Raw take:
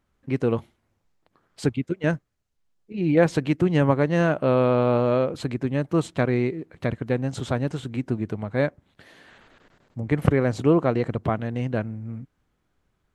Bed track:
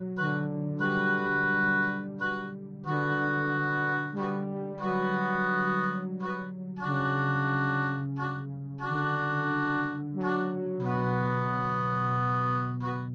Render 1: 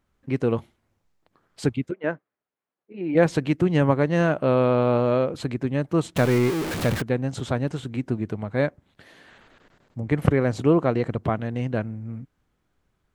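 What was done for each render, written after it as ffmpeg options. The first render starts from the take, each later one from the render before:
-filter_complex "[0:a]asplit=3[s0][s1][s2];[s0]afade=t=out:st=1.9:d=0.02[s3];[s1]highpass=330,lowpass=2000,afade=t=in:st=1.9:d=0.02,afade=t=out:st=3.14:d=0.02[s4];[s2]afade=t=in:st=3.14:d=0.02[s5];[s3][s4][s5]amix=inputs=3:normalize=0,asettb=1/sr,asplit=3[s6][s7][s8];[s6]atrim=end=6.164[s9];[s7]atrim=start=6.16:end=7.02,asetpts=PTS-STARTPTS,afade=t=in:d=0.004:c=qsin,afade=t=out:st=0.856:d=0.004:c=qsin,aeval=exprs='val(0)+0.5*0.0708*sgn(val(0))':c=same[s10];[s8]atrim=start=7.016[s11];[s9][s10]acrossfade=d=0.004:c1=hsin:c2=qsin[s12];[s12][s11]acrossfade=d=0.004:c1=qsin:c2=hsin"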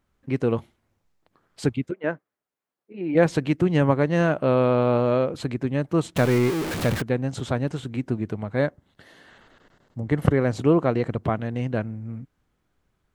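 -filter_complex "[0:a]asettb=1/sr,asplit=3[s0][s1][s2];[s0]atrim=end=8.594[s3];[s1]atrim=start=8.59:end=10.39,asetpts=PTS-STARTPTS,afade=t=in:d=0.004:c=qsin,afade=t=out:st=1.796:d=0.004:c=qsin,bandreject=f=2400:w=7.2[s4];[s2]atrim=start=10.386[s5];[s3][s4]acrossfade=d=0.004:c1=hsin:c2=qsin[s6];[s6][s5]acrossfade=d=0.004:c1=qsin:c2=hsin"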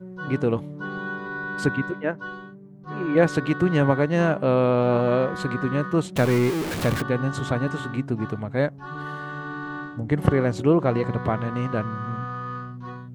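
-filter_complex "[1:a]volume=0.596[s0];[0:a][s0]amix=inputs=2:normalize=0"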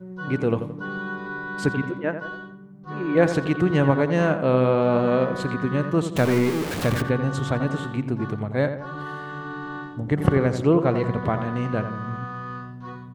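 -filter_complex "[0:a]asplit=2[s0][s1];[s1]adelay=86,lowpass=f=2400:p=1,volume=0.355,asplit=2[s2][s3];[s3]adelay=86,lowpass=f=2400:p=1,volume=0.47,asplit=2[s4][s5];[s5]adelay=86,lowpass=f=2400:p=1,volume=0.47,asplit=2[s6][s7];[s7]adelay=86,lowpass=f=2400:p=1,volume=0.47,asplit=2[s8][s9];[s9]adelay=86,lowpass=f=2400:p=1,volume=0.47[s10];[s0][s2][s4][s6][s8][s10]amix=inputs=6:normalize=0"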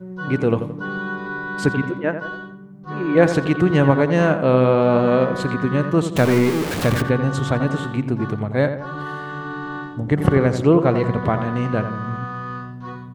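-af "volume=1.58,alimiter=limit=0.891:level=0:latency=1"

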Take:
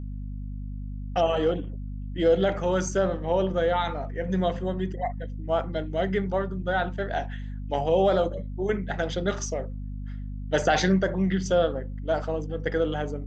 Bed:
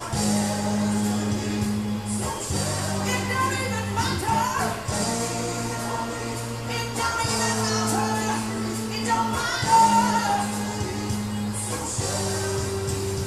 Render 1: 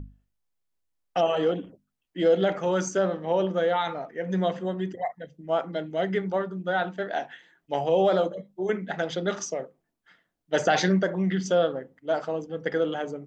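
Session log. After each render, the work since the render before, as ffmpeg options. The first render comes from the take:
-af "bandreject=f=50:t=h:w=6,bandreject=f=100:t=h:w=6,bandreject=f=150:t=h:w=6,bandreject=f=200:t=h:w=6,bandreject=f=250:t=h:w=6"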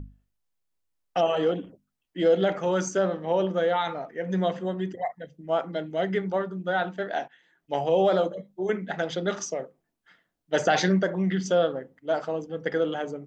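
-filter_complex "[0:a]asplit=2[s0][s1];[s0]atrim=end=7.28,asetpts=PTS-STARTPTS,afade=t=out:st=7.276:d=0.004:c=hsin:silence=0.133352[s2];[s1]atrim=start=7.28,asetpts=PTS-STARTPTS,afade=t=in:d=0.46:silence=0.133352[s3];[s2][s3]concat=n=2:v=0:a=1"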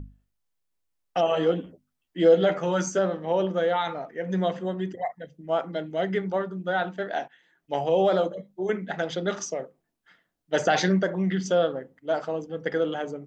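-filter_complex "[0:a]asettb=1/sr,asplit=3[s0][s1][s2];[s0]atrim=end=1.304[s3];[s1]atrim=start=1.3:end=2.99,asetpts=PTS-STARTPTS,afade=t=in:d=0.004:c=qsin,afade=t=out:st=1.686:d=0.004:c=qsin,asplit=2[s4][s5];[s5]adelay=12,volume=0.531[s6];[s4][s6]amix=inputs=2:normalize=0,atrim=end_sample=74529[s7];[s2]atrim=start=2.986[s8];[s3][s7]acrossfade=d=0.004:c1=hsin:c2=qsin[s9];[s9][s8]acrossfade=d=0.004:c1=qsin:c2=hsin"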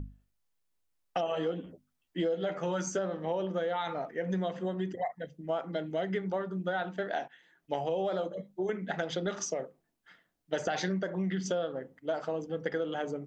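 -af "acompressor=threshold=0.0355:ratio=6"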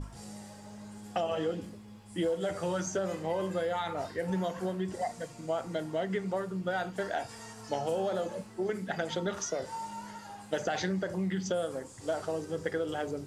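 -filter_complex "[1:a]volume=0.0708[s0];[0:a][s0]amix=inputs=2:normalize=0"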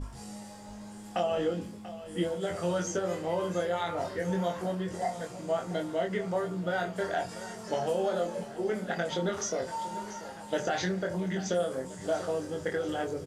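-filter_complex "[0:a]asplit=2[s0][s1];[s1]adelay=23,volume=0.668[s2];[s0][s2]amix=inputs=2:normalize=0,aecho=1:1:688|1376|2064|2752|3440|4128:0.188|0.113|0.0678|0.0407|0.0244|0.0146"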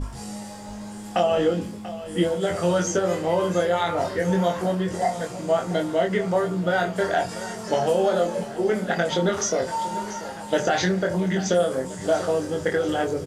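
-af "volume=2.66"

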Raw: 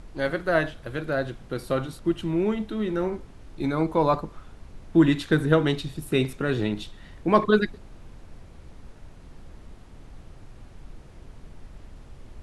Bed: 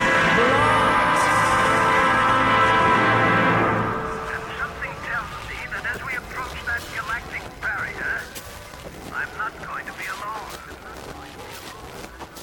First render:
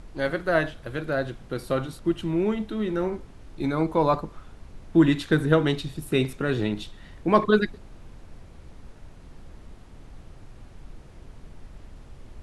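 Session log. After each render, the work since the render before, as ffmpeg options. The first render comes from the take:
-af anull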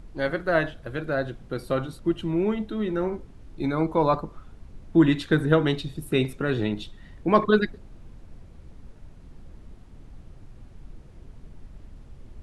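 -af "afftdn=nr=6:nf=-47"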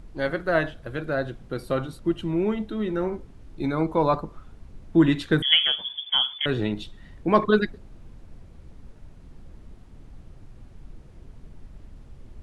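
-filter_complex "[0:a]asettb=1/sr,asplit=3[s0][s1][s2];[s0]atrim=end=5.424[s3];[s1]atrim=start=5.42:end=6.46,asetpts=PTS-STARTPTS,afade=t=in:d=0.004:c=qsin,afade=t=out:st=1.036:d=0.004:c=qsin,lowpass=f=3000:t=q:w=0.5098,lowpass=f=3000:t=q:w=0.6013,lowpass=f=3000:t=q:w=0.9,lowpass=f=3000:t=q:w=2.563,afreqshift=-3500[s4];[s2]atrim=start=6.456[s5];[s3][s4]acrossfade=d=0.004:c1=hsin:c2=qsin[s6];[s6][s5]acrossfade=d=0.004:c1=qsin:c2=hsin"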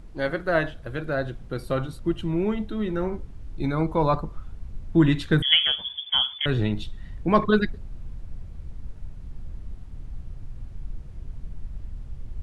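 -af "asubboost=boost=2.5:cutoff=170"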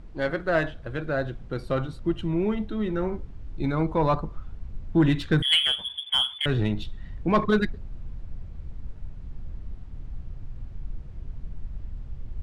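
-af "asoftclip=type=tanh:threshold=0.266,adynamicsmooth=sensitivity=6:basefreq=6400"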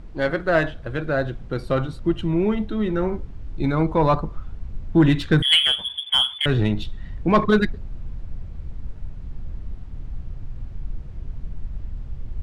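-af "volume=1.68"

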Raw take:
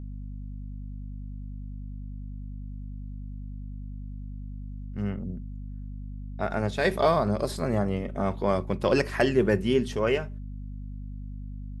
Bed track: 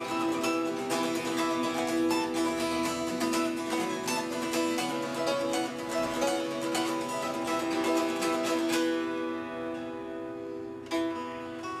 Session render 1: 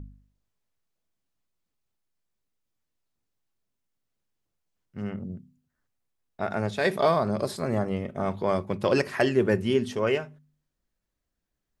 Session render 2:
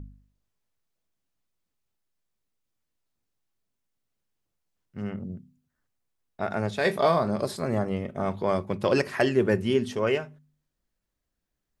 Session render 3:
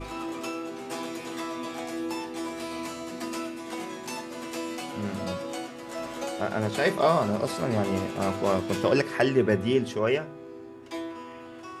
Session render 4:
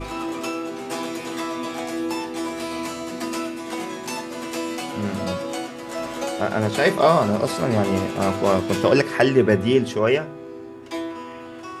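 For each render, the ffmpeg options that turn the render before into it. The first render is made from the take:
-af "bandreject=f=50:t=h:w=4,bandreject=f=100:t=h:w=4,bandreject=f=150:t=h:w=4,bandreject=f=200:t=h:w=4,bandreject=f=250:t=h:w=4"
-filter_complex "[0:a]asettb=1/sr,asplit=3[s0][s1][s2];[s0]atrim=end=6.814[s3];[s1]atrim=start=6.81:end=7.42,asetpts=PTS-STARTPTS,afade=t=in:d=0.004:c=qsin,afade=t=out:st=0.606:d=0.004:c=qsin,asplit=2[s4][s5];[s5]adelay=23,volume=0.299[s6];[s4][s6]amix=inputs=2:normalize=0,atrim=end_sample=26901[s7];[s2]atrim=start=7.416[s8];[s3][s7]acrossfade=d=0.004:c1=hsin:c2=qsin[s9];[s9][s8]acrossfade=d=0.004:c1=qsin:c2=hsin"
-filter_complex "[1:a]volume=0.562[s0];[0:a][s0]amix=inputs=2:normalize=0"
-af "volume=2"

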